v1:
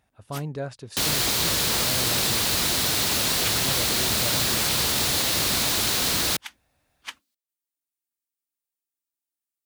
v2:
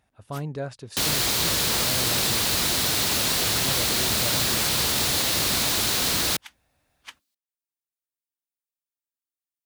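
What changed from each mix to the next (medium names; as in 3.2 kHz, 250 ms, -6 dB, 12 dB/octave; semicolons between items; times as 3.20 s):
first sound -6.0 dB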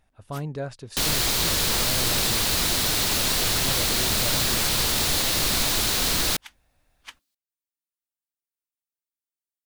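master: remove high-pass 69 Hz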